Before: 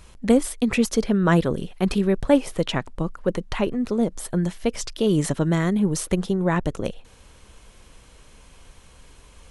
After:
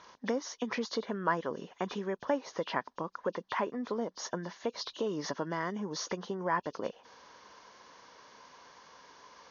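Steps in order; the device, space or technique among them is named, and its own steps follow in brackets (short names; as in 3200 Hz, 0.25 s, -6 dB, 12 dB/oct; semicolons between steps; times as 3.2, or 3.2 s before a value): hearing aid with frequency lowering (nonlinear frequency compression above 2400 Hz 1.5:1; compressor 3:1, threshold -27 dBFS, peak gain reduction 12 dB; speaker cabinet 330–6300 Hz, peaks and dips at 350 Hz -3 dB, 1000 Hz +9 dB, 1700 Hz +4 dB, 2600 Hz -8 dB); 4.52–5.06 dynamic EQ 1900 Hz, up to -5 dB, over -52 dBFS, Q 1.4; gain -1.5 dB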